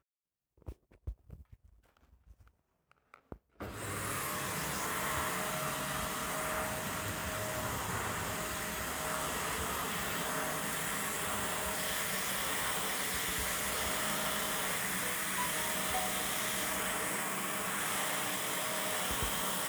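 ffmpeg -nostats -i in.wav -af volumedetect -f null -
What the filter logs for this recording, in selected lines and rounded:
mean_volume: -36.7 dB
max_volume: -18.9 dB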